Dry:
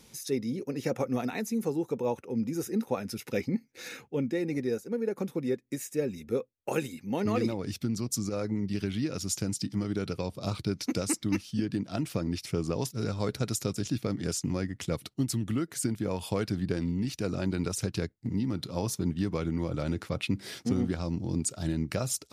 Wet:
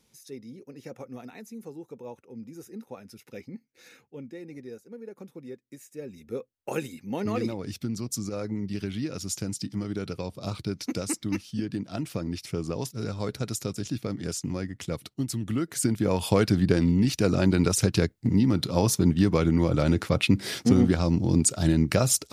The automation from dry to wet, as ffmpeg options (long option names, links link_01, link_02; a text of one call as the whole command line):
ffmpeg -i in.wav -af "volume=8.5dB,afade=type=in:start_time=5.92:duration=0.82:silence=0.298538,afade=type=in:start_time=15.38:duration=0.97:silence=0.354813" out.wav